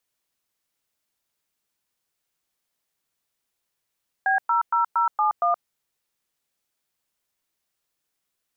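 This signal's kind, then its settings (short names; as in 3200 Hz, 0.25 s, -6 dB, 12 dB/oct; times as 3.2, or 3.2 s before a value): DTMF "B00071", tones 0.123 s, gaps 0.109 s, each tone -20.5 dBFS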